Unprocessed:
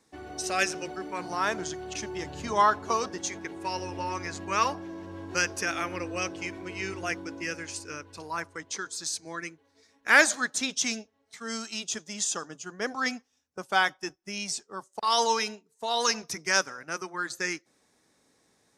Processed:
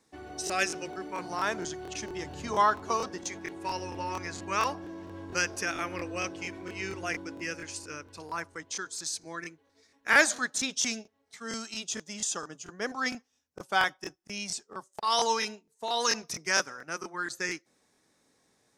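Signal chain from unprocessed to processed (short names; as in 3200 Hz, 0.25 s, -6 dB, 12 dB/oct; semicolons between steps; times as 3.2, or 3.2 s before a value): crackling interface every 0.23 s, samples 1024, repeat, from 0.45; gain -2 dB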